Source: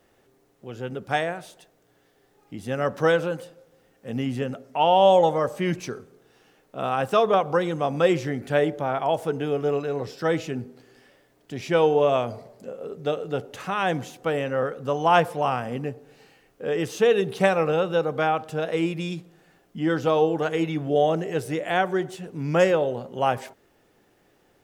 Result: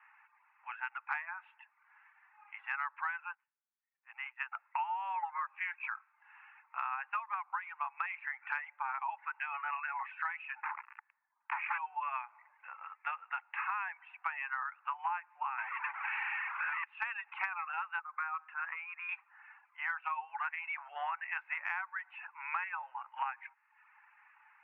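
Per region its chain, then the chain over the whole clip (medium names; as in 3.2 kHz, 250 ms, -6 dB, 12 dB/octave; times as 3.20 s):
3.32–4.52 s: high-pass 580 Hz 6 dB/octave + upward expansion 2.5:1, over -49 dBFS
10.63–11.78 s: low-pass 1.2 kHz + waveshaping leveller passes 5
15.58–16.84 s: bass shelf 390 Hz -8 dB + power-law waveshaper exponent 0.35
17.99–19.09 s: peaking EQ 5 kHz -8.5 dB 1.1 oct + compression 4:1, threshold -26 dBFS + rippled Chebyshev high-pass 340 Hz, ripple 9 dB
whole clip: reverb removal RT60 0.57 s; Chebyshev band-pass 860–2600 Hz, order 5; compression 16:1, threshold -42 dBFS; trim +8.5 dB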